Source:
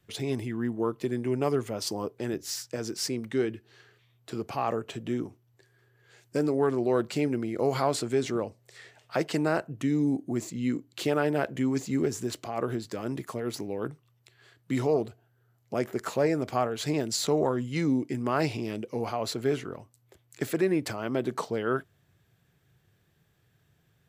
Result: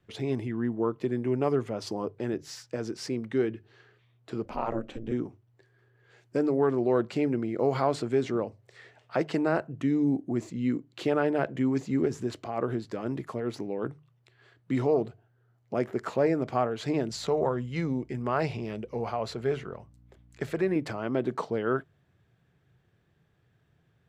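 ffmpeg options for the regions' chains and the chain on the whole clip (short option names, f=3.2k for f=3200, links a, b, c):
-filter_complex "[0:a]asettb=1/sr,asplit=3[a][b][c];[a]atrim=end=4.454[d];[b]atrim=start=4.45:end=5.12,asetpts=PTS-STARTPTS,afade=t=in:d=0.004:c=qsin,afade=t=out:st=0.666:d=0.004:c=qsin,lowshelf=f=140:g=11,bandreject=f=60:t=h:w=6,bandreject=f=120:t=h:w=6,bandreject=f=180:t=h:w=6,bandreject=f=240:t=h:w=6,bandreject=f=300:t=h:w=6,bandreject=f=360:t=h:w=6,bandreject=f=420:t=h:w=6,bandreject=f=480:t=h:w=6,bandreject=f=540:t=h:w=6,aeval=exprs='val(0)*sin(2*PI*110*n/s)':c=same[e];[c]atrim=start=5.116[f];[d][e]acrossfade=d=0.004:c1=hsin:c2=qsin[g];[g][f]acrossfade=d=0.004:c1=qsin:c2=hsin,asettb=1/sr,asplit=3[h][i][j];[h]atrim=end=17.094[k];[i]atrim=start=17.09:end=20.76,asetpts=PTS-STARTPTS,afade=t=in:d=0.004:c=qsin,afade=t=out:st=3.666:d=0.004:c=qsin,equalizer=f=290:t=o:w=0.43:g=-9.5,aeval=exprs='val(0)+0.00126*(sin(2*PI*60*n/s)+sin(2*PI*2*60*n/s)/2+sin(2*PI*3*60*n/s)/3+sin(2*PI*4*60*n/s)/4+sin(2*PI*5*60*n/s)/5)':c=same[l];[j]atrim=start=20.756[m];[k][l]acrossfade=d=0.004:c1=hsin:c2=qsin[n];[n][m]acrossfade=d=0.004:c1=qsin:c2=hsin,aemphasis=mode=reproduction:type=75fm,bandreject=f=50:t=h:w=6,bandreject=f=100:t=h:w=6,bandreject=f=150:t=h:w=6"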